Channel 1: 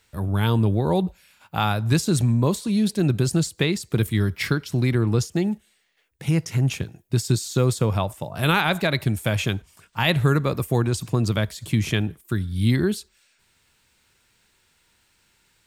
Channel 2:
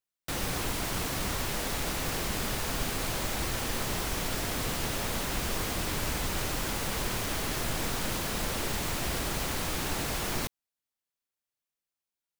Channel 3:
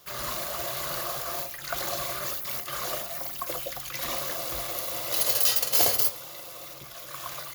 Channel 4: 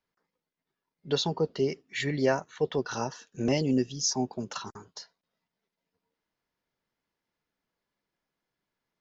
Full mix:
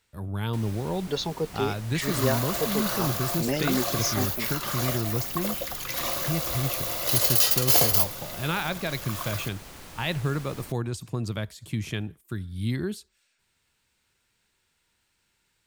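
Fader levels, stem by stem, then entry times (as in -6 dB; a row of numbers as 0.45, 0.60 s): -8.5, -12.5, +2.0, -1.5 dB; 0.00, 0.25, 1.95, 0.00 s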